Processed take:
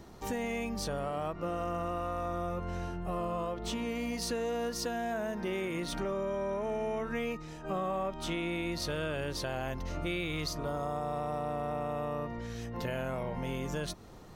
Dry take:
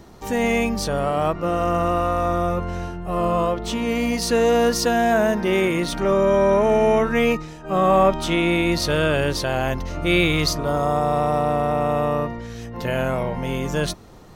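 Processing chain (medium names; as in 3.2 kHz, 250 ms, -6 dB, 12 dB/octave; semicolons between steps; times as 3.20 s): compression 6:1, threshold -26 dBFS, peak gain reduction 13 dB; trim -6 dB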